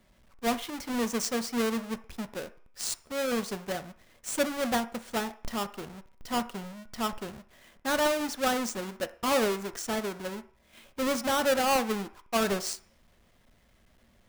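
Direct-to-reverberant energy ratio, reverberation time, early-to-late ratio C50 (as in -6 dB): 10.0 dB, 0.50 s, 16.0 dB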